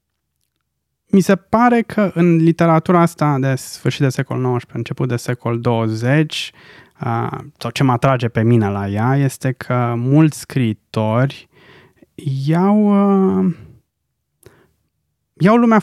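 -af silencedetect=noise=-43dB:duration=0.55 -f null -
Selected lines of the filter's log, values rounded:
silence_start: 0.00
silence_end: 1.11 | silence_duration: 1.11
silence_start: 13.77
silence_end: 14.43 | silence_duration: 0.66
silence_start: 14.61
silence_end: 15.37 | silence_duration: 0.76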